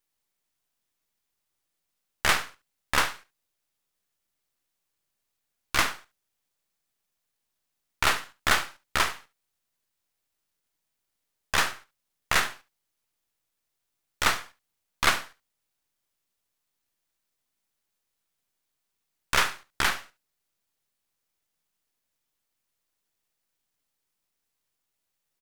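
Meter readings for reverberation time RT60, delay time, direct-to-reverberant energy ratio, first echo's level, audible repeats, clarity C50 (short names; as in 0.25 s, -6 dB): none, 71 ms, none, -16.5 dB, 1, none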